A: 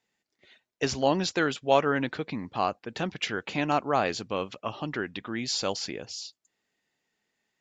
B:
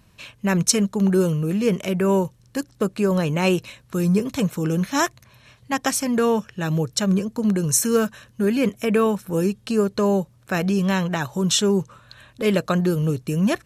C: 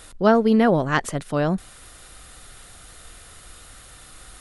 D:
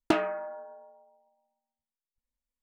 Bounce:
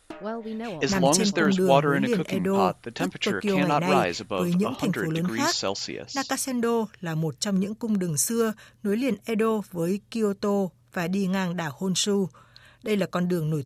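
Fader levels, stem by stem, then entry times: +2.0, −5.0, −16.5, −15.5 decibels; 0.00, 0.45, 0.00, 0.00 seconds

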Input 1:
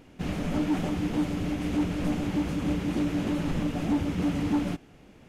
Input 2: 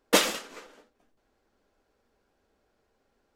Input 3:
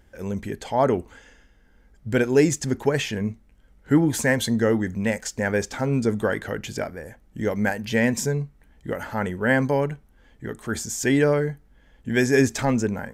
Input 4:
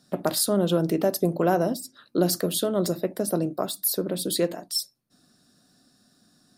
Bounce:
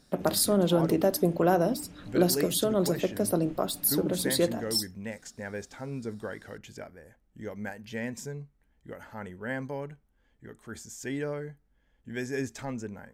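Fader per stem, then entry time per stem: −18.5 dB, muted, −14.0 dB, −1.5 dB; 0.00 s, muted, 0.00 s, 0.00 s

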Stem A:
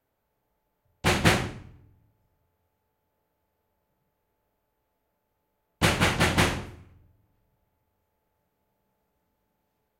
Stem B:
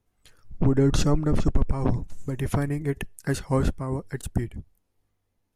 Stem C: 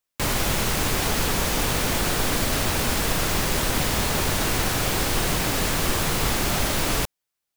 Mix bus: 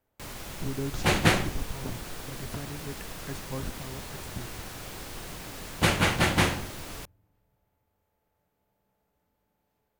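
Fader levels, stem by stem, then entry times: −1.0, −13.0, −17.0 decibels; 0.00, 0.00, 0.00 seconds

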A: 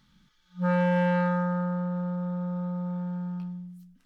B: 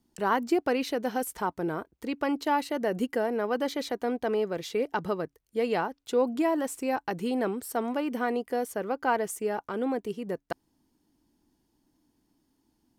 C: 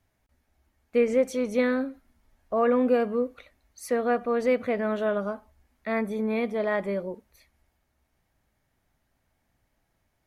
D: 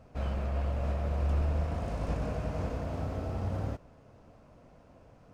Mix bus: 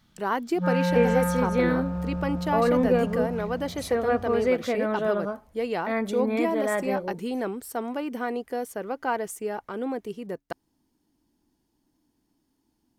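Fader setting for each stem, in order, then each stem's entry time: −0.5, −1.0, 0.0, −9.0 decibels; 0.00, 0.00, 0.00, 0.75 seconds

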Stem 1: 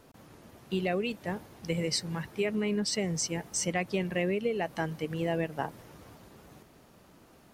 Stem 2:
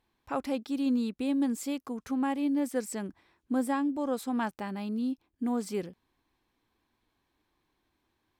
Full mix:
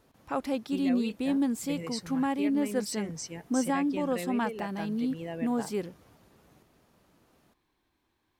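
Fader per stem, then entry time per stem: −7.5, +1.0 decibels; 0.00, 0.00 seconds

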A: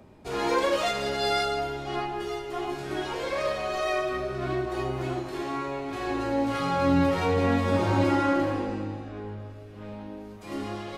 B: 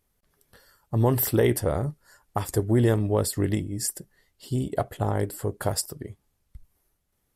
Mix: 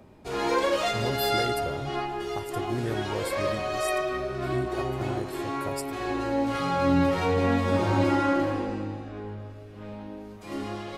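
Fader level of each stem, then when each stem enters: 0.0, −10.5 decibels; 0.00, 0.00 seconds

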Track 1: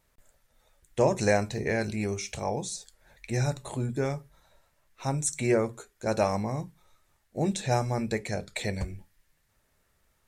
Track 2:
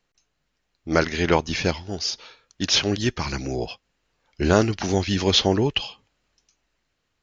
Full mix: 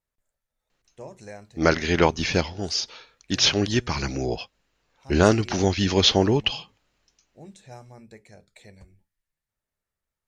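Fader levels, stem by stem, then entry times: −17.5, +0.5 decibels; 0.00, 0.70 seconds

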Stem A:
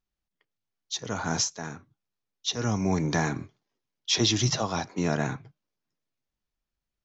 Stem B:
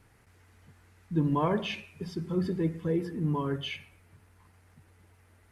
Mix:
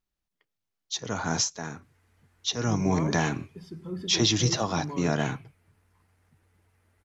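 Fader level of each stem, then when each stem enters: +0.5, −6.5 decibels; 0.00, 1.55 seconds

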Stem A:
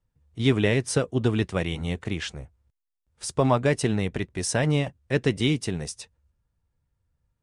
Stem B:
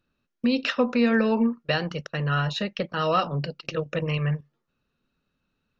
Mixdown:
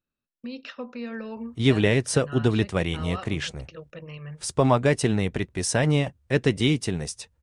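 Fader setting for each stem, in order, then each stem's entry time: +1.5, −13.5 decibels; 1.20, 0.00 seconds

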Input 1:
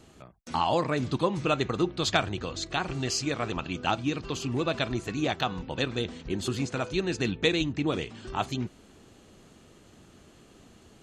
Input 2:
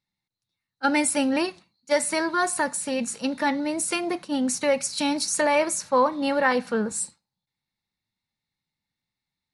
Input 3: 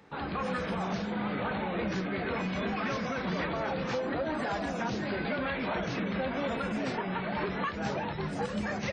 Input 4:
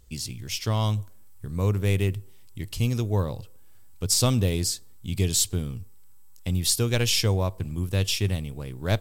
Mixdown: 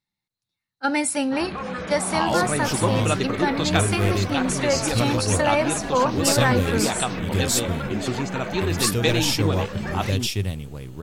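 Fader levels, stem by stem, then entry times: +2.0, −0.5, +2.0, 0.0 decibels; 1.60, 0.00, 1.20, 2.15 seconds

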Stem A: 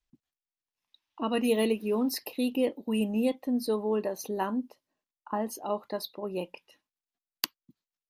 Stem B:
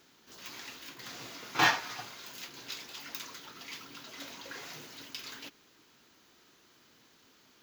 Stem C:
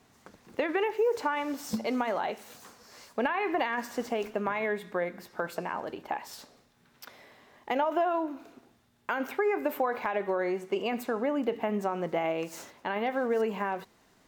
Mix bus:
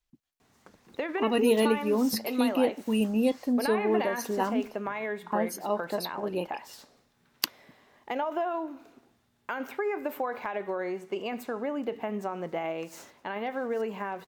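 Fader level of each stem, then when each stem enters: +2.0 dB, muted, −3.0 dB; 0.00 s, muted, 0.40 s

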